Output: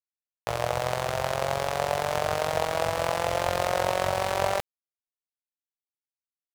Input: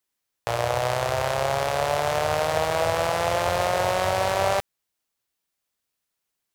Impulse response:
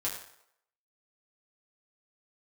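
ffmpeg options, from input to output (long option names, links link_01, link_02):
-af "tremolo=f=45:d=0.788,acrusher=bits=6:mix=0:aa=0.5"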